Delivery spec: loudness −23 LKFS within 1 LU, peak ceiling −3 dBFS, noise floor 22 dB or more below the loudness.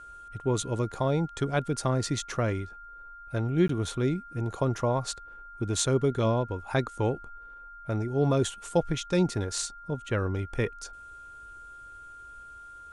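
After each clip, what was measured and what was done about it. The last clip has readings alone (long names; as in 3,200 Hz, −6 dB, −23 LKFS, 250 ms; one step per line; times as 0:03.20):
number of dropouts 1; longest dropout 13 ms; interfering tone 1,400 Hz; level of the tone −44 dBFS; integrated loudness −29.0 LKFS; sample peak −10.0 dBFS; target loudness −23.0 LKFS
→ repair the gap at 0:03.68, 13 ms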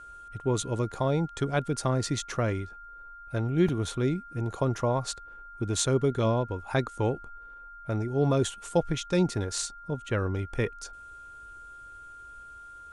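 number of dropouts 0; interfering tone 1,400 Hz; level of the tone −44 dBFS
→ notch filter 1,400 Hz, Q 30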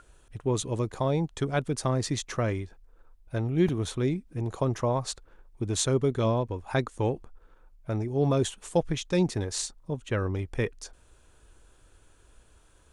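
interfering tone none found; integrated loudness −29.0 LKFS; sample peak −10.0 dBFS; target loudness −23.0 LKFS
→ level +6 dB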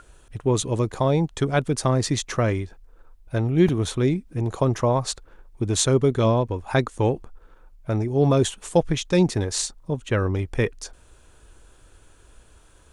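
integrated loudness −23.0 LKFS; sample peak −4.0 dBFS; background noise floor −54 dBFS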